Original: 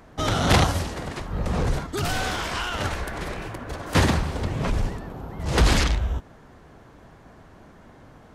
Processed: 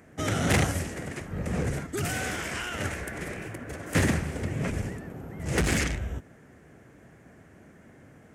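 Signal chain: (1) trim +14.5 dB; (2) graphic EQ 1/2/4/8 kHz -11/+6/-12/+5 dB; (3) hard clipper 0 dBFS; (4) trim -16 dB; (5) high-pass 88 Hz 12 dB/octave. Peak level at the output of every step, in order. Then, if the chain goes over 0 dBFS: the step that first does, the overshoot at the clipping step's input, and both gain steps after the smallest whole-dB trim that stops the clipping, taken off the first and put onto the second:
+6.5 dBFS, +7.5 dBFS, 0.0 dBFS, -16.0 dBFS, -11.0 dBFS; step 1, 7.5 dB; step 1 +6.5 dB, step 4 -8 dB

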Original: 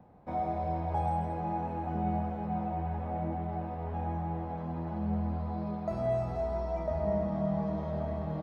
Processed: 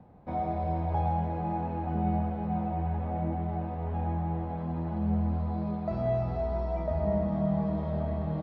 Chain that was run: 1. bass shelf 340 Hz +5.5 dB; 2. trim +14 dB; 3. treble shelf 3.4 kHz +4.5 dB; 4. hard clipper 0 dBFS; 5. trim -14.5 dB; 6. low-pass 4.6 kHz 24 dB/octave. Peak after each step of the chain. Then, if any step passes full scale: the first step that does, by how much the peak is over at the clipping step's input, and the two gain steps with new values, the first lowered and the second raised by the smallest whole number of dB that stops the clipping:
-17.0 dBFS, -3.0 dBFS, -3.0 dBFS, -3.0 dBFS, -17.5 dBFS, -17.5 dBFS; nothing clips

